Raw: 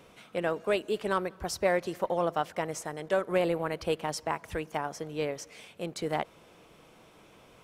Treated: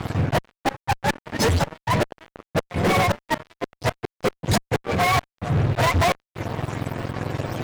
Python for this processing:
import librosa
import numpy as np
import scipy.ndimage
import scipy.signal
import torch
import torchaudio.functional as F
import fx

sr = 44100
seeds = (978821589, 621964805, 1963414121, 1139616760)

y = fx.octave_mirror(x, sr, pivot_hz=580.0)
y = fx.gate_flip(y, sr, shuts_db=-24.0, range_db=-34)
y = fx.fuzz(y, sr, gain_db=50.0, gate_db=-57.0)
y = y * 10.0 ** (-3.5 / 20.0)